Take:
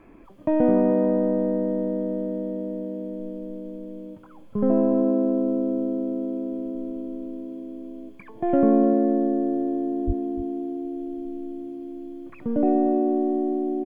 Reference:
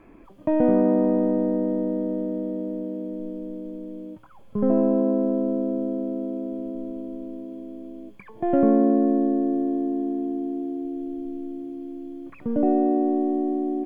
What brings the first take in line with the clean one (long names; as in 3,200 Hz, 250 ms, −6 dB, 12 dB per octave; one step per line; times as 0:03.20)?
0:10.06–0:10.18: high-pass filter 140 Hz 24 dB per octave
echo removal 298 ms −14 dB